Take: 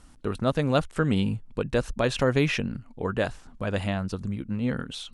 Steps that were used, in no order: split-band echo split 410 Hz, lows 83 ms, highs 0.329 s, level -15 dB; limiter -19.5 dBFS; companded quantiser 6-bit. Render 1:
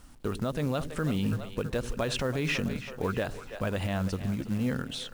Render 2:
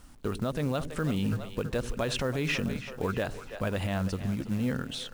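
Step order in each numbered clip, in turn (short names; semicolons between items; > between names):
split-band echo > companded quantiser > limiter; companded quantiser > split-band echo > limiter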